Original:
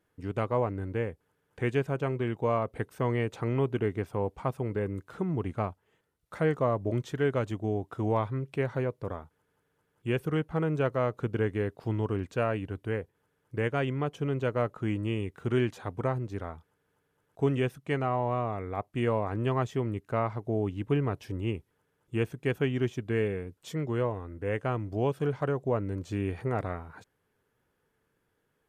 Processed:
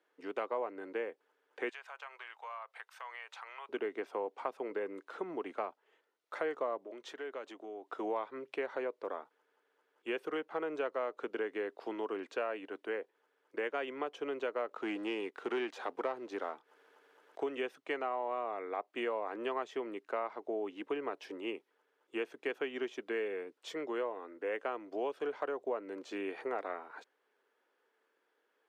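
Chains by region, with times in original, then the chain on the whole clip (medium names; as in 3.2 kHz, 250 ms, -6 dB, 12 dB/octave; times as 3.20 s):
1.69–3.69 s: high-pass 880 Hz 24 dB/octave + compression 3:1, threshold -45 dBFS
6.84–7.90 s: high-pass 200 Hz 6 dB/octave + compression 2.5:1, threshold -42 dBFS
14.69–17.43 s: upward compressor, threshold -48 dBFS + waveshaping leveller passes 1
whole clip: high-pass 260 Hz 24 dB/octave; three-band isolator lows -16 dB, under 330 Hz, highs -14 dB, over 5.7 kHz; compression 3:1, threshold -35 dBFS; trim +1 dB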